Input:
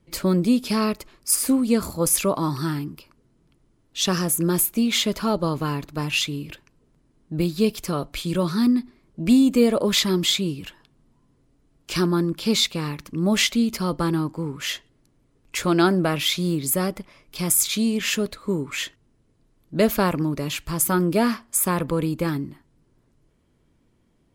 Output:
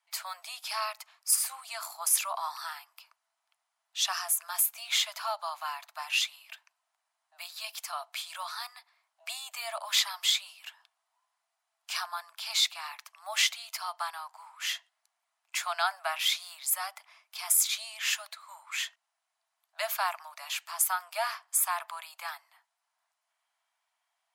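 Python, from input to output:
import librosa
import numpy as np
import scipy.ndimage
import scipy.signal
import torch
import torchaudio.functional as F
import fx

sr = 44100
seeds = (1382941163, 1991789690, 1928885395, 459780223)

y = scipy.signal.sosfilt(scipy.signal.butter(16, 670.0, 'highpass', fs=sr, output='sos'), x)
y = F.gain(torch.from_numpy(y), -4.5).numpy()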